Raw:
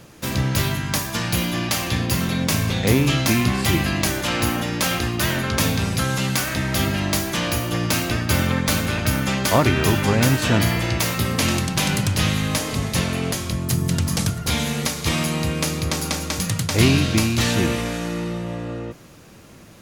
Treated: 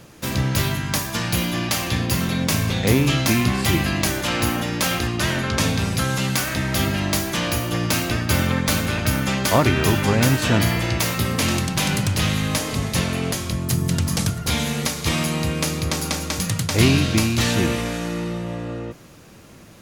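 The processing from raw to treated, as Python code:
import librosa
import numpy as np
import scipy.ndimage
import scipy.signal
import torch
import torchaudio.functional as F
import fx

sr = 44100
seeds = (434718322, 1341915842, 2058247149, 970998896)

y = fx.lowpass(x, sr, hz=10000.0, slope=12, at=(5.07, 5.78))
y = fx.overload_stage(y, sr, gain_db=14.0, at=(11.22, 12.51))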